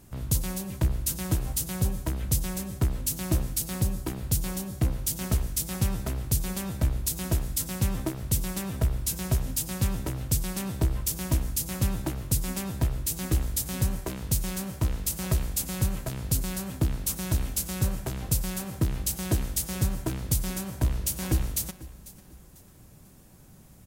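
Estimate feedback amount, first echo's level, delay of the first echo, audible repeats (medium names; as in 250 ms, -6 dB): 37%, -19.0 dB, 496 ms, 2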